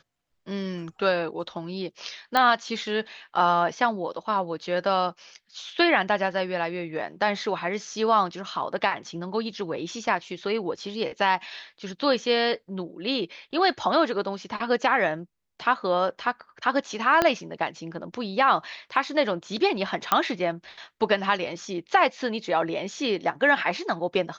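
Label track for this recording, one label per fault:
2.370000	2.370000	pop -9 dBFS
17.220000	17.220000	pop -7 dBFS
20.120000	20.120000	pop -6 dBFS

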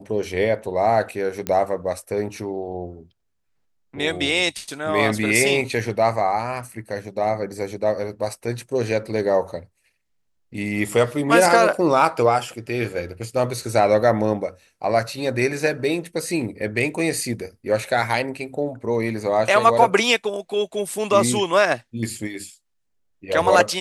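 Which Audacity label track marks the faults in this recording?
1.470000	1.470000	pop -9 dBFS

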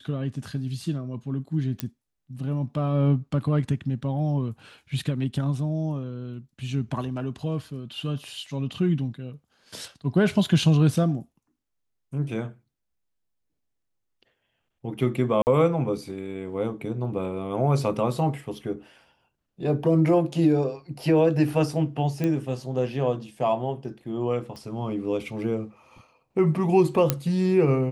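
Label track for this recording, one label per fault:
1.800000	1.800000	pop -12 dBFS
15.420000	15.470000	dropout 49 ms
22.240000	22.240000	pop -15 dBFS
24.560000	24.560000	pop -27 dBFS
27.100000	27.100000	pop -5 dBFS

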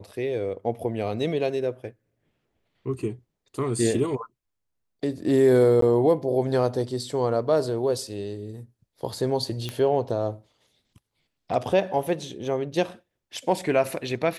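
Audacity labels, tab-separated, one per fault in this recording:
5.810000	5.820000	dropout 13 ms
9.690000	9.690000	pop -16 dBFS

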